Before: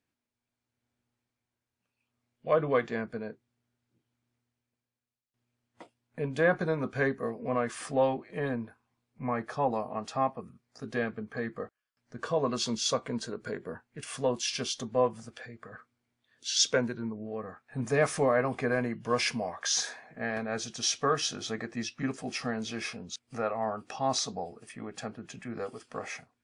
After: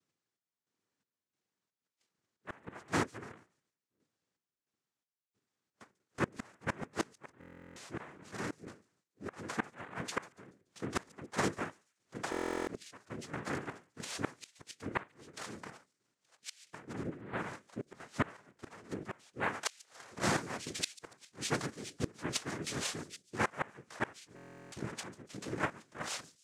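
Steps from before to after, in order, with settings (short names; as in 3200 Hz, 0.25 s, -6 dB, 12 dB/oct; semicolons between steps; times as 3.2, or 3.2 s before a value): bell 1000 Hz -4 dB 0.49 oct; notches 60/120/180/240/300/360/420/480/540/600 Hz; in parallel at -0.5 dB: level quantiser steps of 17 dB; on the sum: noise vocoder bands 3; flipped gate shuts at -17 dBFS, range -26 dB; chopper 1.5 Hz, depth 65%, duty 55%; on a send: thin delay 0.143 s, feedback 38%, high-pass 4500 Hz, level -17.5 dB; on the sum: stuck buffer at 7.39/12.3/24.35, samples 1024, times 15; gain -1.5 dB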